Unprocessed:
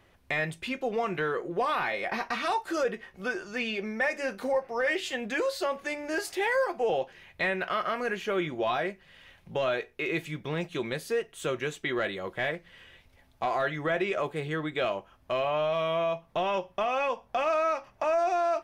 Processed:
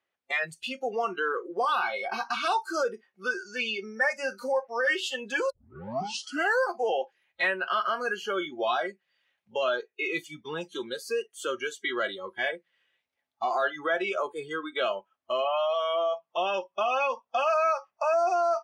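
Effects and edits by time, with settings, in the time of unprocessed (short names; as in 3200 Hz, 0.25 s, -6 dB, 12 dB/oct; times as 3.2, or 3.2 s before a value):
5.5 tape start 1.13 s
whole clip: weighting filter A; spectral noise reduction 23 dB; notch 990 Hz, Q 17; gain +3 dB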